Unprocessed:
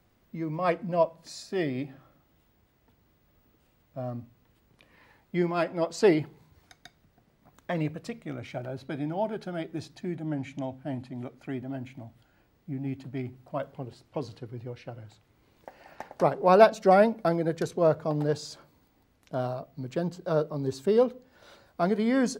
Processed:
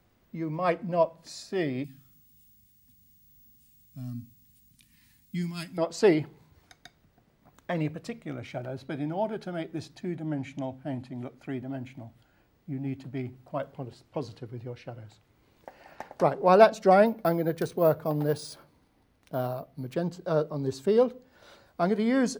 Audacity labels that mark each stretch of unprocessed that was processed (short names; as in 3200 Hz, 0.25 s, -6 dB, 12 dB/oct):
1.840000	5.780000	EQ curve 250 Hz 0 dB, 450 Hz -29 dB, 8800 Hz +14 dB
17.060000	19.940000	careless resampling rate divided by 3×, down filtered, up hold